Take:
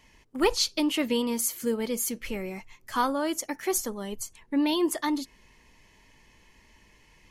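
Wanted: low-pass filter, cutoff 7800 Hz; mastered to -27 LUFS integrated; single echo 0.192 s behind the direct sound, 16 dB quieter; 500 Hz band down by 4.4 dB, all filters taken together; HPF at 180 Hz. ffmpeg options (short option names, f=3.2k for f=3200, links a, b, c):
-af "highpass=180,lowpass=7.8k,equalizer=f=500:t=o:g=-5.5,aecho=1:1:192:0.158,volume=3.5dB"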